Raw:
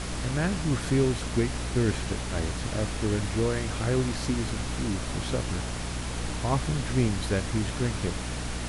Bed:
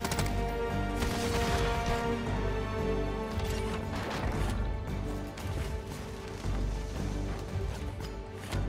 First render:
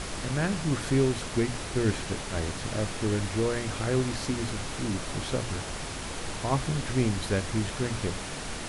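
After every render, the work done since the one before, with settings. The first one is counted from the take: notches 60/120/180/240/300 Hz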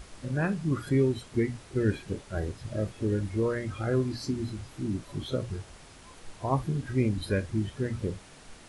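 noise print and reduce 15 dB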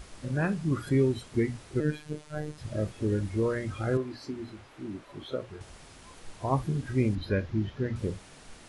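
1.8–2.58 robotiser 151 Hz; 3.97–5.61 tone controls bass -13 dB, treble -12 dB; 7.15–7.96 running mean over 5 samples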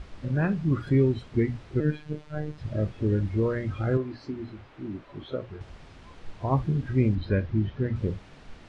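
LPF 3800 Hz 12 dB/oct; low shelf 220 Hz +6 dB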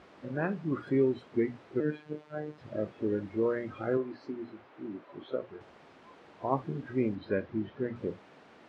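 HPF 300 Hz 12 dB/oct; high shelf 2600 Hz -11.5 dB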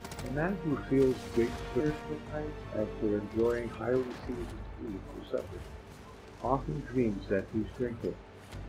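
add bed -11 dB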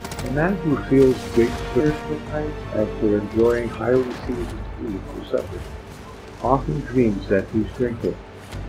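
gain +11.5 dB

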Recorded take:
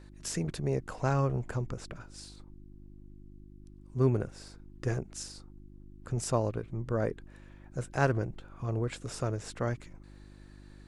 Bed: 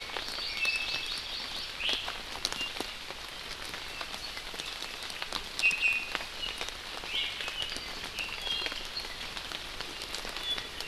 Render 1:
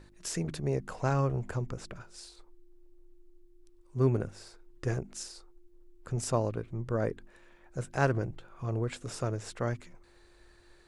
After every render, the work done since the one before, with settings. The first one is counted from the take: de-hum 50 Hz, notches 6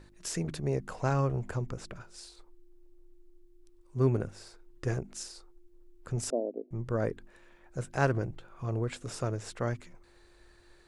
6.3–6.71 elliptic band-pass 240–670 Hz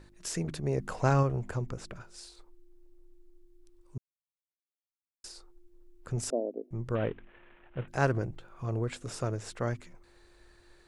0.78–1.23 gain +3.5 dB; 3.98–5.24 mute; 6.95–7.88 CVSD 16 kbps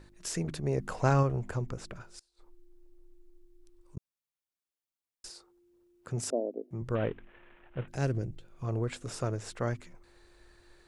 2.19–3.97 flipped gate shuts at -41 dBFS, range -25 dB; 5.29–6.82 HPF 100 Hz; 7.95–8.62 bell 1100 Hz -14 dB 1.8 oct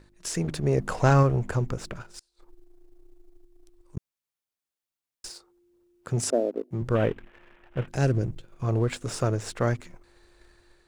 AGC gain up to 3.5 dB; sample leveller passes 1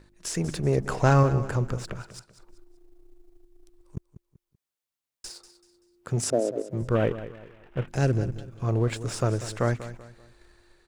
feedback echo 0.192 s, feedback 35%, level -14 dB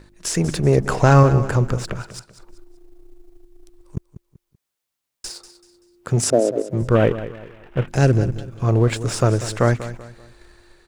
gain +8 dB; limiter -3 dBFS, peak gain reduction 2.5 dB

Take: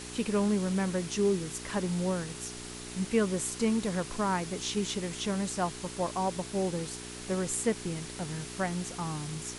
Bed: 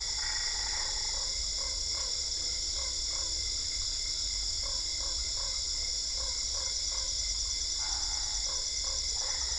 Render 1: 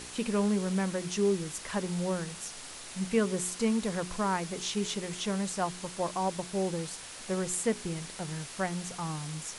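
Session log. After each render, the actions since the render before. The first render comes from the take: de-hum 60 Hz, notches 7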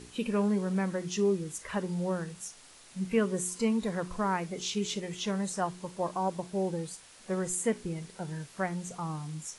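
noise print and reduce 10 dB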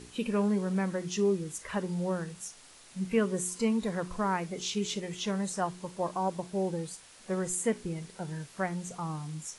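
nothing audible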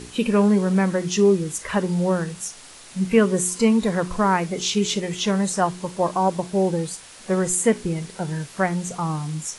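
gain +10.5 dB

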